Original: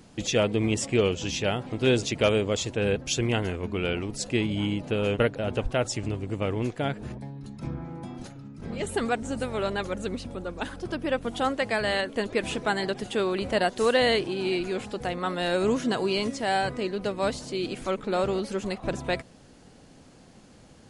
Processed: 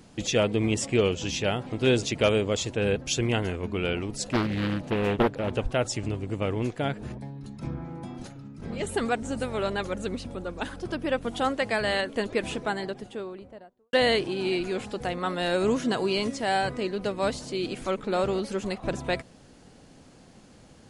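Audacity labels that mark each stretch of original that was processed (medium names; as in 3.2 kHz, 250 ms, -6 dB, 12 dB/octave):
4.280000	5.530000	loudspeaker Doppler distortion depth 0.8 ms
12.160000	13.930000	studio fade out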